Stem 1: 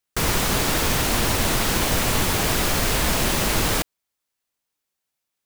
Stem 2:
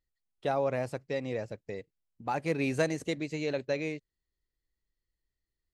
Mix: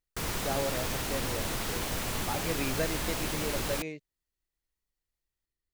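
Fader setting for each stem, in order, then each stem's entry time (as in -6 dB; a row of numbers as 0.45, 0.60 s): -12.0, -4.0 dB; 0.00, 0.00 s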